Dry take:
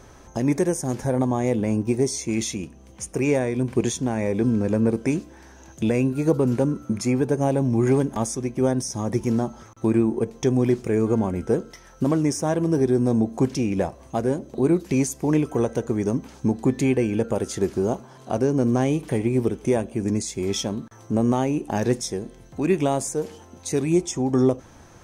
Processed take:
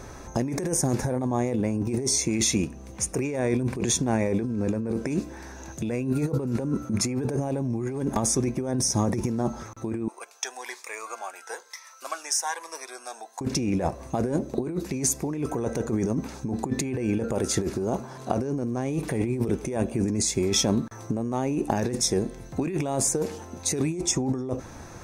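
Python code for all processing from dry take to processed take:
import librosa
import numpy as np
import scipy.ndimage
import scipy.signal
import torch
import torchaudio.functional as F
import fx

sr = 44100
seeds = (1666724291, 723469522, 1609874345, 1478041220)

y = fx.chain(x, sr, fx.highpass(hz=890.0, slope=24),
    fx.notch_cascade(direction='rising', hz=1.1), at=(10.08, 13.41))
y = fx.notch(y, sr, hz=3100.0, q=7.7)
y = fx.over_compress(y, sr, threshold_db=-27.0, ratio=-1.0)
y = y * 10.0 ** (1.0 / 20.0)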